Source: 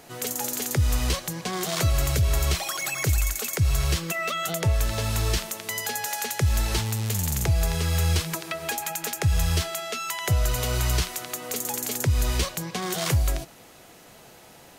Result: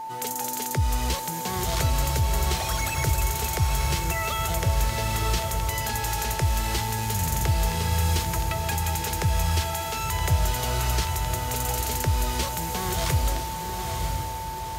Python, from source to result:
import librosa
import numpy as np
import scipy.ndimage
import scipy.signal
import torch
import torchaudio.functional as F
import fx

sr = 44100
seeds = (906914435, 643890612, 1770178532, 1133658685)

y = fx.echo_diffused(x, sr, ms=948, feedback_pct=52, wet_db=-4.5)
y = y + 10.0 ** (-30.0 / 20.0) * np.sin(2.0 * np.pi * 890.0 * np.arange(len(y)) / sr)
y = F.gain(torch.from_numpy(y), -2.0).numpy()